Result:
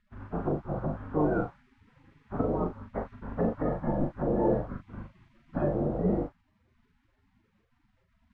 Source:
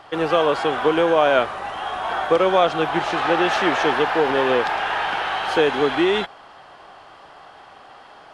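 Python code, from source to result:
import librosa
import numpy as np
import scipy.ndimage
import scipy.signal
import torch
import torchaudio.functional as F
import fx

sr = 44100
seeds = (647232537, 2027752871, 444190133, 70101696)

p1 = fx.bin_compress(x, sr, power=0.4)
p2 = fx.riaa(p1, sr, side='playback')
p3 = fx.noise_reduce_blind(p2, sr, reduce_db=23)
p4 = fx.env_lowpass_down(p3, sr, base_hz=610.0, full_db=-16.5)
p5 = fx.quant_dither(p4, sr, seeds[0], bits=6, dither='triangular')
p6 = p4 + F.gain(torch.from_numpy(p5), -6.0).numpy()
p7 = fx.spec_gate(p6, sr, threshold_db=-20, keep='weak')
p8 = fx.peak_eq(p7, sr, hz=1400.0, db=5.5, octaves=0.83)
p9 = fx.env_lowpass(p8, sr, base_hz=310.0, full_db=-9.0)
p10 = fx.doubler(p9, sr, ms=40.0, db=-6)
y = F.gain(torch.from_numpy(p10), 9.0).numpy()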